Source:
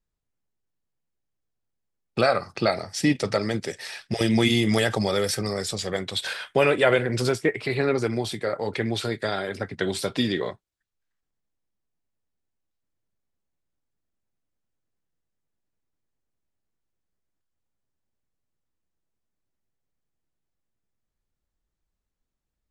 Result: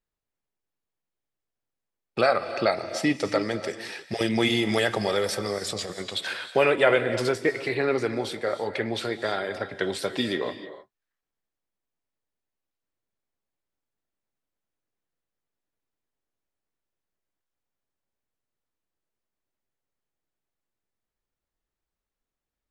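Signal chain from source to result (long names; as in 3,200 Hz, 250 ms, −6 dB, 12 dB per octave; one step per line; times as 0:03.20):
bass and treble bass −8 dB, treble −5 dB
0:05.58–0:06.02: compressor whose output falls as the input rises −33 dBFS, ratio −0.5
reverb whose tail is shaped and stops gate 340 ms rising, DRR 11.5 dB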